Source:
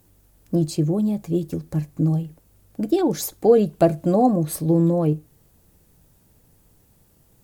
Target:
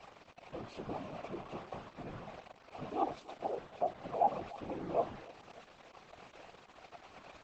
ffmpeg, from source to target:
-filter_complex "[0:a]aeval=exprs='val(0)+0.5*0.0668*sgn(val(0))':c=same,highshelf=f=2.4k:g=4,asettb=1/sr,asplit=3[a][b][c];[a]atrim=end=3.404[d];[b]atrim=start=3.4:end=4.2,asetpts=PTS-STARTPTS,afade=t=in:d=0.004:c=qsin,afade=t=out:st=0.796:d=0.004:c=qsin,acompressor=threshold=-20dB:ratio=16[e];[c]atrim=start=4.196[f];[d][e]acrossfade=d=0.004:c1=hsin:c2=qsin[g];[g][f]acrossfade=d=0.004:c1=qsin:c2=hsin,alimiter=limit=-15dB:level=0:latency=1:release=42,flanger=delay=5:depth=1.6:regen=-16:speed=0.36:shape=triangular,asplit=3[h][i][j];[h]bandpass=f=730:t=q:w=8,volume=0dB[k];[i]bandpass=f=1.09k:t=q:w=8,volume=-6dB[l];[j]bandpass=f=2.44k:t=q:w=8,volume=-9dB[m];[k][l][m]amix=inputs=3:normalize=0,aeval=exprs='val(0)*gte(abs(val(0)),0.00398)':c=same,afftfilt=real='hypot(re,im)*cos(2*PI*random(0))':imag='hypot(re,im)*sin(2*PI*random(1))':win_size=512:overlap=0.75,adynamicsmooth=sensitivity=2:basefreq=4.2k,asplit=2[n][o];[o]adelay=293,lowpass=f=1.1k:p=1,volume=-18dB,asplit=2[p][q];[q]adelay=293,lowpass=f=1.1k:p=1,volume=0.48,asplit=2[r][s];[s]adelay=293,lowpass=f=1.1k:p=1,volume=0.48,asplit=2[t][u];[u]adelay=293,lowpass=f=1.1k:p=1,volume=0.48[v];[p][r][t][v]amix=inputs=4:normalize=0[w];[n][w]amix=inputs=2:normalize=0,aresample=32000,aresample=44100,volume=9dB" -ar 48000 -c:a libopus -b:a 12k

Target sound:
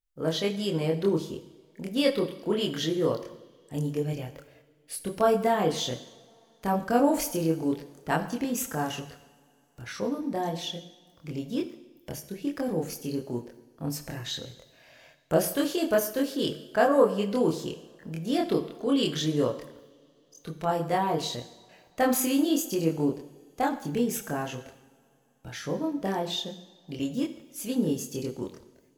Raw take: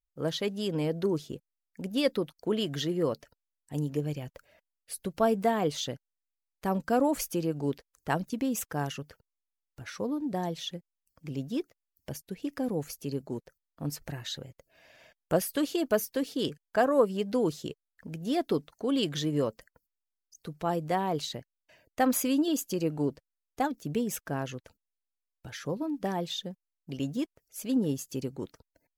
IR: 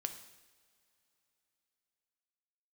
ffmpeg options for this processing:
-filter_complex "[0:a]asplit=2[a][b];[b]equalizer=f=130:t=o:w=2:g=-3.5[c];[1:a]atrim=start_sample=2205,adelay=25[d];[c][d]afir=irnorm=-1:irlink=0,volume=1.5dB[e];[a][e]amix=inputs=2:normalize=0"

